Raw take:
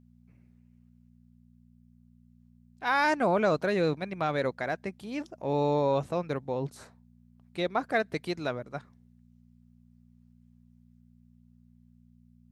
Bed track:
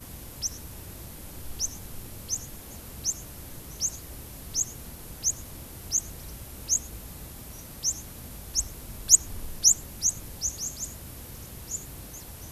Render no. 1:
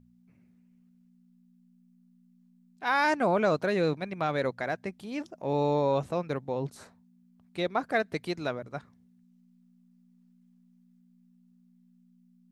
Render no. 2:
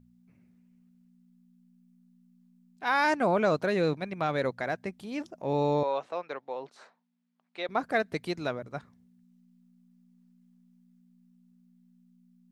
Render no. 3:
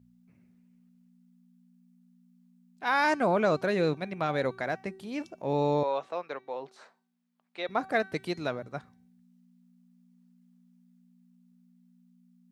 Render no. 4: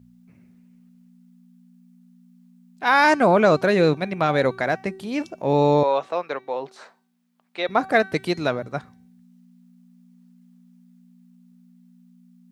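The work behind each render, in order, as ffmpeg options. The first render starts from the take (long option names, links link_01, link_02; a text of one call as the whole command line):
ffmpeg -i in.wav -af "bandreject=frequency=60:width_type=h:width=4,bandreject=frequency=120:width_type=h:width=4" out.wav
ffmpeg -i in.wav -filter_complex "[0:a]asettb=1/sr,asplit=3[link_01][link_02][link_03];[link_01]atrim=end=5.834[link_04];[link_02]atrim=start=5.83:end=7.69,asetpts=PTS-STARTPTS,afade=type=in:duration=0.004:curve=qsin,afade=type=out:start_time=1.856:duration=0.004:curve=qsin,highpass=580,lowpass=4100[link_05];[link_03]atrim=start=7.686[link_06];[link_04][link_05]acrossfade=duration=0.004:curve1=hsin:curve2=qsin[link_07];[link_07][link_06]acrossfade=duration=0.004:curve1=qsin:curve2=hsin" out.wav
ffmpeg -i in.wav -af "highpass=57,bandreject=frequency=382.6:width_type=h:width=4,bandreject=frequency=765.2:width_type=h:width=4,bandreject=frequency=1147.8:width_type=h:width=4,bandreject=frequency=1530.4:width_type=h:width=4,bandreject=frequency=1913:width_type=h:width=4,bandreject=frequency=2295.6:width_type=h:width=4,bandreject=frequency=2678.2:width_type=h:width=4,bandreject=frequency=3060.8:width_type=h:width=4,bandreject=frequency=3443.4:width_type=h:width=4,bandreject=frequency=3826:width_type=h:width=4,bandreject=frequency=4208.6:width_type=h:width=4,bandreject=frequency=4591.2:width_type=h:width=4,bandreject=frequency=4973.8:width_type=h:width=4,bandreject=frequency=5356.4:width_type=h:width=4,bandreject=frequency=5739:width_type=h:width=4,bandreject=frequency=6121.6:width_type=h:width=4,bandreject=frequency=6504.2:width_type=h:width=4,bandreject=frequency=6886.8:width_type=h:width=4,bandreject=frequency=7269.4:width_type=h:width=4,bandreject=frequency=7652:width_type=h:width=4,bandreject=frequency=8034.6:width_type=h:width=4,bandreject=frequency=8417.2:width_type=h:width=4,bandreject=frequency=8799.8:width_type=h:width=4,bandreject=frequency=9182.4:width_type=h:width=4,bandreject=frequency=9565:width_type=h:width=4,bandreject=frequency=9947.6:width_type=h:width=4,bandreject=frequency=10330.2:width_type=h:width=4,bandreject=frequency=10712.8:width_type=h:width=4,bandreject=frequency=11095.4:width_type=h:width=4" out.wav
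ffmpeg -i in.wav -af "volume=9dB" out.wav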